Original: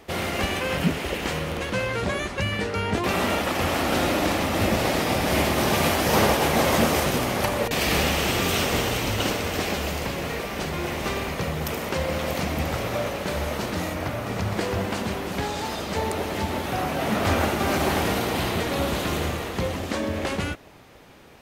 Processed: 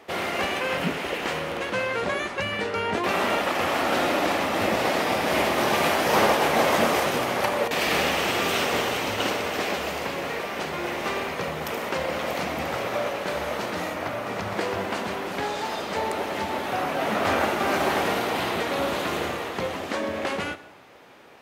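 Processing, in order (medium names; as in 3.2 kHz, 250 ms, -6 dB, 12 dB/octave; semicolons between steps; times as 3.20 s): high-pass 540 Hz 6 dB/octave; treble shelf 3.5 kHz -9.5 dB; on a send: reverberation RT60 0.85 s, pre-delay 8 ms, DRR 13 dB; on the sum: trim +3.5 dB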